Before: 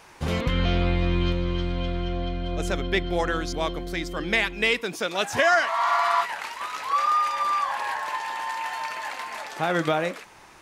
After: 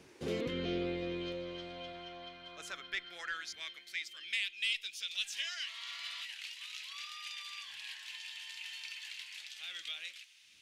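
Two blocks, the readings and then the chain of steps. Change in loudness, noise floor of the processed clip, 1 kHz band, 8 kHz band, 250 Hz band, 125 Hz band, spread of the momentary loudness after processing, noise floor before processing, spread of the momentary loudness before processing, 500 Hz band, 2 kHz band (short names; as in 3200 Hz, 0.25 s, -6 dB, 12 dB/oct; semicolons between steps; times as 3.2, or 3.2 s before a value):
-14.5 dB, -59 dBFS, -28.0 dB, -9.0 dB, -14.5 dB, -22.0 dB, 10 LU, -49 dBFS, 10 LU, -16.0 dB, -14.0 dB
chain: wind noise 110 Hz -37 dBFS; high shelf 7800 Hz -8.5 dB; in parallel at -2 dB: limiter -19 dBFS, peak gain reduction 11 dB; on the sum: high-pass sweep 390 Hz -> 3000 Hz, 0.71–4.53; soft clip -6 dBFS, distortion -25 dB; passive tone stack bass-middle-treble 10-0-1; gain +9.5 dB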